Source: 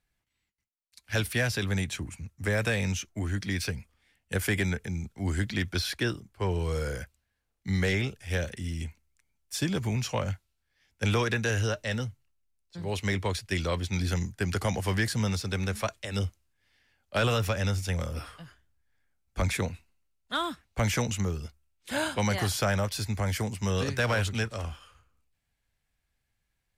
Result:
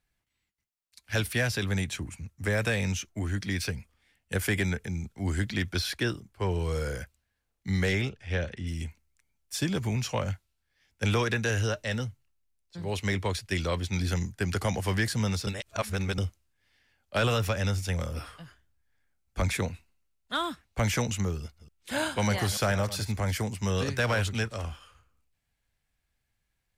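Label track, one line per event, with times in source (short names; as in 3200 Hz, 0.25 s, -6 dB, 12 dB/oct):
8.090000	8.670000	LPF 3900 Hz
15.470000	16.180000	reverse
21.390000	23.320000	reverse delay 0.148 s, level -13.5 dB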